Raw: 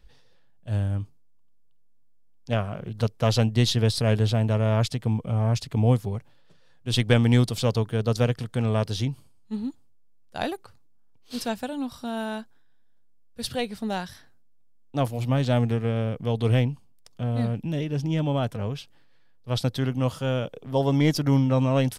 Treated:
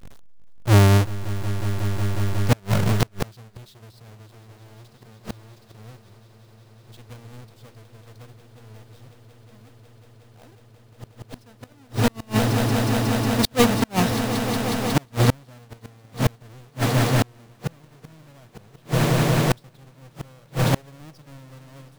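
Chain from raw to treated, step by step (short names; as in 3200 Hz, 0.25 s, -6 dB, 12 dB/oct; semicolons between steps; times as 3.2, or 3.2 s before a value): half-waves squared off; swelling echo 0.182 s, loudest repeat 8, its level -14.5 dB; flipped gate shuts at -15 dBFS, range -36 dB; gain +7.5 dB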